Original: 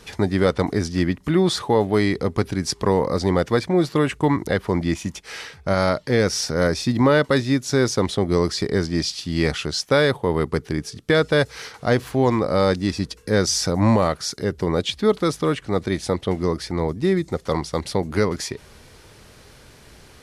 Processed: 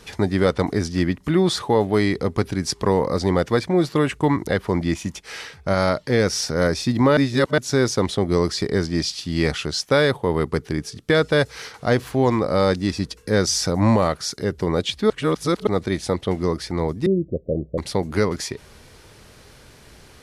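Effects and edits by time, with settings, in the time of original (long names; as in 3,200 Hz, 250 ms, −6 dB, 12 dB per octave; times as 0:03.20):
0:07.17–0:07.58: reverse
0:15.10–0:15.67: reverse
0:17.06–0:17.78: Butterworth low-pass 640 Hz 96 dB per octave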